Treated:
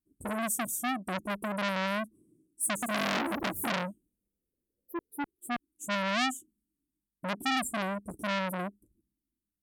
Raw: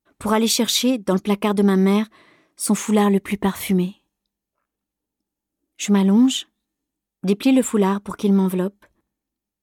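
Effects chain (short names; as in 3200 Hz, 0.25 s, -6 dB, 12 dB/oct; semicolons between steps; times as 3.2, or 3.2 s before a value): elliptic band-stop 330–8700 Hz, stop band 40 dB; 2.71–5.97 echoes that change speed 0.114 s, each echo +3 st, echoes 3; core saturation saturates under 3500 Hz; gain -4 dB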